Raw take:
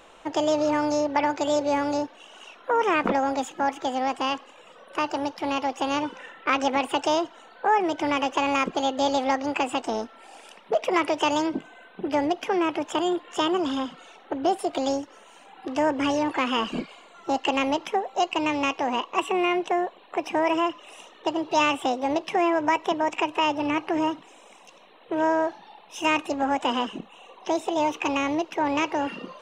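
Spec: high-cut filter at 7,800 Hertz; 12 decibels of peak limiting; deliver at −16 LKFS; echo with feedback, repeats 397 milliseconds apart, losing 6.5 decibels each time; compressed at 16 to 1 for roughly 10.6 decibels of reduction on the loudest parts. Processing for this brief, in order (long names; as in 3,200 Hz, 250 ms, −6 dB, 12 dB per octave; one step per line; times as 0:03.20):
low-pass filter 7,800 Hz
downward compressor 16 to 1, threshold −28 dBFS
brickwall limiter −30 dBFS
repeating echo 397 ms, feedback 47%, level −6.5 dB
level +22.5 dB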